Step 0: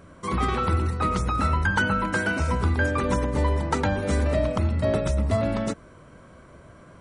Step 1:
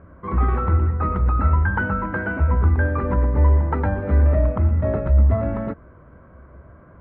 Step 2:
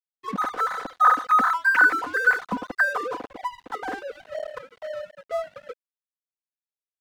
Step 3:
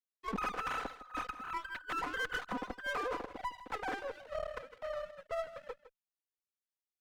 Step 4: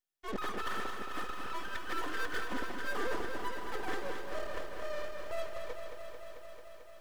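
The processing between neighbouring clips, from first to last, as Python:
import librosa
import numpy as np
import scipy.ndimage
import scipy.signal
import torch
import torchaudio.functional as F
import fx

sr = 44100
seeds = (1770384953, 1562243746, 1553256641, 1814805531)

y1 = scipy.signal.sosfilt(scipy.signal.butter(4, 1800.0, 'lowpass', fs=sr, output='sos'), x)
y1 = fx.peak_eq(y1, sr, hz=66.0, db=11.0, octaves=0.69)
y2 = fx.sine_speech(y1, sr)
y2 = y2 + 0.65 * np.pad(y2, (int(4.0 * sr / 1000.0), 0))[:len(y2)]
y2 = np.sign(y2) * np.maximum(np.abs(y2) - 10.0 ** (-31.5 / 20.0), 0.0)
y2 = y2 * librosa.db_to_amplitude(-7.5)
y3 = fx.over_compress(y2, sr, threshold_db=-26.0, ratio=-0.5)
y3 = fx.tube_stage(y3, sr, drive_db=23.0, bias=0.8)
y3 = y3 + 10.0 ** (-15.0 / 20.0) * np.pad(y3, (int(159 * sr / 1000.0), 0))[:len(y3)]
y3 = y3 * librosa.db_to_amplitude(-6.5)
y4 = fx.small_body(y3, sr, hz=(370.0, 1800.0, 3300.0), ring_ms=45, db=10)
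y4 = np.maximum(y4, 0.0)
y4 = fx.echo_crushed(y4, sr, ms=221, feedback_pct=80, bits=11, wet_db=-7.0)
y4 = y4 * librosa.db_to_amplitude(5.0)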